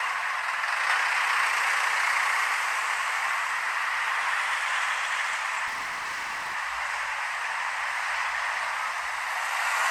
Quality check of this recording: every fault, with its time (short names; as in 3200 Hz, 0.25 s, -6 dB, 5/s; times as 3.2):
5.66–6.56 clipped -28.5 dBFS